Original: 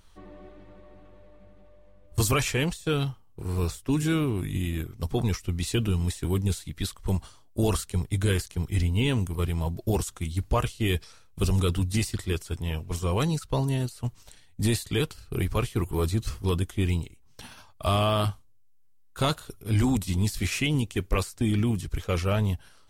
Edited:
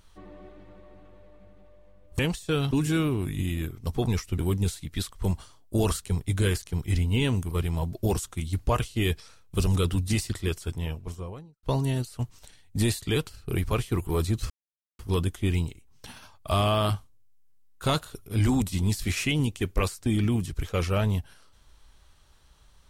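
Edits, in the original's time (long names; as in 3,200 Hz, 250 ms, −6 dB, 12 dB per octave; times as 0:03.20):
0:02.19–0:02.57: remove
0:03.09–0:03.87: remove
0:05.54–0:06.22: remove
0:12.48–0:13.47: fade out and dull
0:16.34: splice in silence 0.49 s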